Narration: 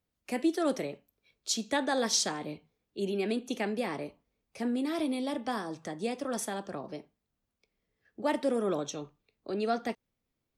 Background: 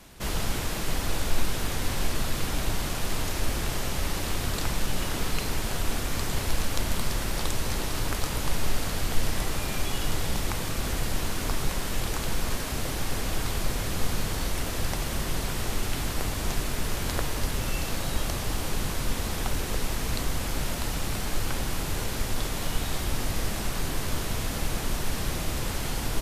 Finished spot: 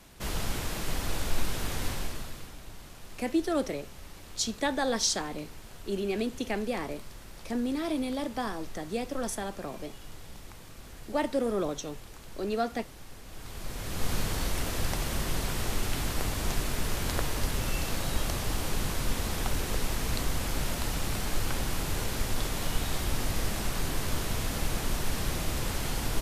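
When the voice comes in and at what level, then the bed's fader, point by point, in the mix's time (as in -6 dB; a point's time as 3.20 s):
2.90 s, +0.5 dB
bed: 1.87 s -3.5 dB
2.58 s -18 dB
13.24 s -18 dB
14.13 s -1.5 dB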